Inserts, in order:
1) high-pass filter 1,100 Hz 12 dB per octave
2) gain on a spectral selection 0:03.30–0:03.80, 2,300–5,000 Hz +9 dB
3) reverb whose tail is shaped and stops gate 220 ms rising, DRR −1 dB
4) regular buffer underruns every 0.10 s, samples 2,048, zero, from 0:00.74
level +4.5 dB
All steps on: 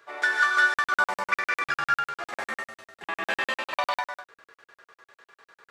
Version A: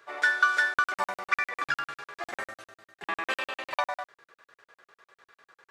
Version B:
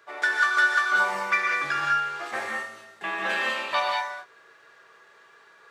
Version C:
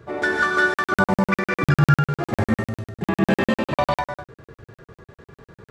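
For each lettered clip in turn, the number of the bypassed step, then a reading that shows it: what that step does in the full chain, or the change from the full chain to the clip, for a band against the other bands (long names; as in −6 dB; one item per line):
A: 3, change in momentary loudness spread +2 LU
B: 4, change in crest factor −2.0 dB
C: 1, 125 Hz band +31.5 dB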